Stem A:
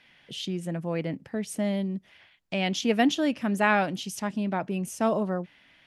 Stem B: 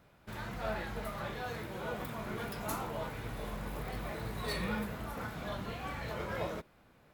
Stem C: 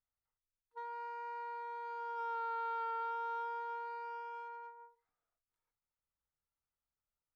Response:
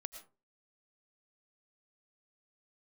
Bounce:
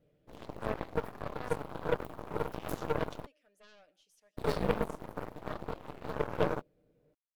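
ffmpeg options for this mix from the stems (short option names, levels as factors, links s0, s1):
-filter_complex "[0:a]highpass=1300,volume=0.141,asplit=2[s0][s1];[s1]volume=0.422[s2];[1:a]volume=0.75,asplit=3[s3][s4][s5];[s3]atrim=end=3.26,asetpts=PTS-STARTPTS,afade=t=out:st=3.256:d=0.004:c=hsin[s6];[s4]atrim=start=3.26:end=4.37,asetpts=PTS-STARTPTS,volume=0[s7];[s5]atrim=start=4.37,asetpts=PTS-STARTPTS,afade=t=in:d=0.004:c=hsin[s8];[s6][s7][s8]concat=n=3:v=0:a=1[s9];[3:a]atrim=start_sample=2205[s10];[s2][s10]afir=irnorm=-1:irlink=0[s11];[s0][s9][s11]amix=inputs=3:normalize=0,lowshelf=f=700:t=q:w=3:g=11,aecho=1:1:6.6:0.56,aeval=exprs='0.211*(cos(1*acos(clip(val(0)/0.211,-1,1)))-cos(1*PI/2))+0.075*(cos(3*acos(clip(val(0)/0.211,-1,1)))-cos(3*PI/2))+0.0211*(cos(4*acos(clip(val(0)/0.211,-1,1)))-cos(4*PI/2))+0.0299*(cos(5*acos(clip(val(0)/0.211,-1,1)))-cos(5*PI/2))+0.0237*(cos(7*acos(clip(val(0)/0.211,-1,1)))-cos(7*PI/2))':c=same"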